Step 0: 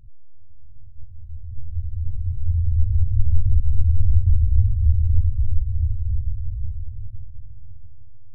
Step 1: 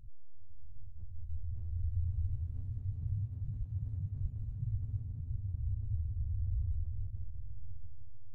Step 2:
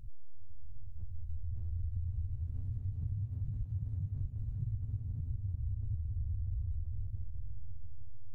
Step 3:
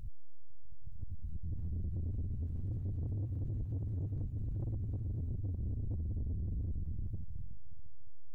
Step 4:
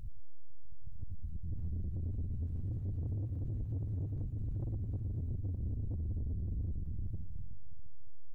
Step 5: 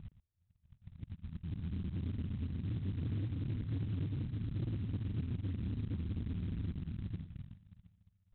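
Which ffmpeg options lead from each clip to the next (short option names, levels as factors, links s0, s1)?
-af "afftfilt=real='re*lt(hypot(re,im),0.891)':imag='im*lt(hypot(re,im),0.891)':win_size=1024:overlap=0.75,volume=0.562"
-af "acompressor=threshold=0.0141:ratio=6,volume=1.68"
-af "asoftclip=type=tanh:threshold=0.0112,volume=1.88"
-filter_complex "[0:a]asplit=2[s0][s1];[s1]adelay=116.6,volume=0.178,highshelf=f=4000:g=-2.62[s2];[s0][s2]amix=inputs=2:normalize=0"
-af "bandpass=f=210:t=q:w=1.3:csg=0,aresample=8000,acrusher=bits=6:mode=log:mix=0:aa=0.000001,aresample=44100,volume=2.24"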